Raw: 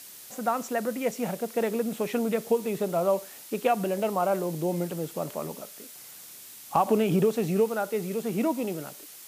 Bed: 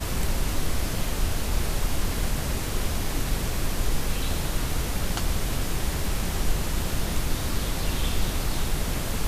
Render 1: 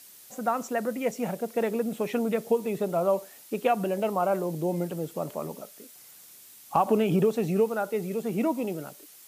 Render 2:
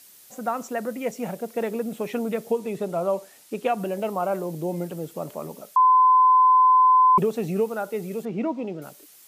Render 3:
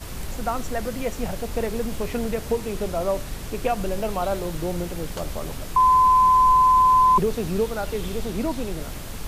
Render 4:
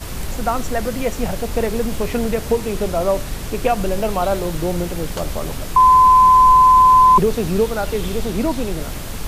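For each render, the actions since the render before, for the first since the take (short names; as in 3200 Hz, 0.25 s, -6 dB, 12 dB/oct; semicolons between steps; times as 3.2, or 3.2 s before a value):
denoiser 6 dB, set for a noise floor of -46 dBFS
2.52–3.78 LPF 12000 Hz; 5.76–7.18 bleep 1020 Hz -12.5 dBFS; 8.25–8.82 air absorption 160 m
add bed -6.5 dB
gain +6 dB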